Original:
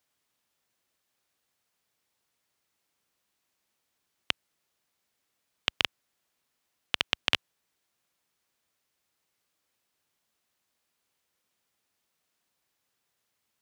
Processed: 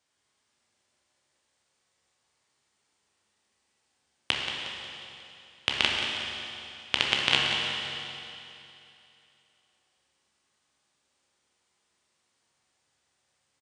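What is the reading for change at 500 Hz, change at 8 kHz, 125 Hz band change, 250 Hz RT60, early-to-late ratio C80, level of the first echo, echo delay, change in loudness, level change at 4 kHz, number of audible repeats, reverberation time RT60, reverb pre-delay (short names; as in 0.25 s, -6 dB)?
+6.5 dB, +6.0 dB, +8.0 dB, 2.8 s, 0.0 dB, -9.0 dB, 0.18 s, +3.0 dB, +6.5 dB, 1, 2.8 s, 15 ms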